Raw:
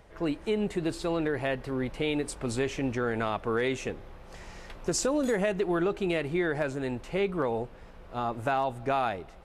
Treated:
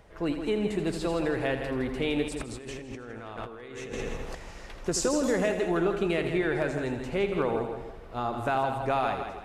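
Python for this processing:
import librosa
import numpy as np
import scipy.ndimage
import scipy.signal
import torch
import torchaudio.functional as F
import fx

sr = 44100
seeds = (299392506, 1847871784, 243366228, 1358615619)

y = fx.echo_heads(x, sr, ms=82, heads='first and second', feedback_pct=42, wet_db=-10.0)
y = fx.over_compress(y, sr, threshold_db=-39.0, ratio=-1.0, at=(2.28, 4.35))
y = fx.echo_warbled(y, sr, ms=159, feedback_pct=47, rate_hz=2.8, cents=74, wet_db=-16.0)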